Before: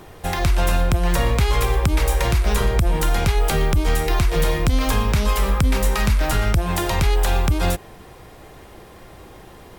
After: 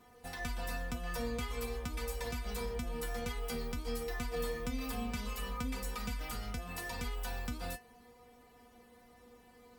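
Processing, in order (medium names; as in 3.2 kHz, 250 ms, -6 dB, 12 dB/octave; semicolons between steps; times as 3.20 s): high-pass 40 Hz; bass shelf 240 Hz +3.5 dB; inharmonic resonator 240 Hz, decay 0.23 s, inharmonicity 0.002; trim -4 dB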